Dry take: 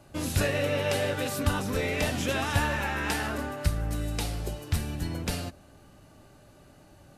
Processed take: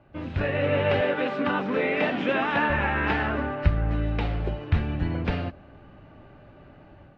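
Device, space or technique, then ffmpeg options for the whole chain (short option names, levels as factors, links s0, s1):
action camera in a waterproof case: -filter_complex "[0:a]asettb=1/sr,asplit=3[s0][s1][s2];[s0]atrim=end=1.014[s3];[s1]atrim=start=1.01:end=2.7,asetpts=PTS-STARTPTS,afade=t=in:d=0.004:c=qsin,afade=t=out:st=1.686:d=0.004:c=qsin,highpass=f=190:w=0.5412,highpass=f=190:w=1.3066[s4];[s2]atrim=start=2.696[s5];[s3][s4]acrossfade=d=0.004:c1=hsin:c2=qsin[s6];[s6][s5]acrossfade=d=0.004:c1=qsin:c2=hsin,lowpass=f=2700:w=0.5412,lowpass=f=2700:w=1.3066,dynaudnorm=f=370:g=3:m=2.51,volume=0.75" -ar 24000 -c:a aac -b:a 48k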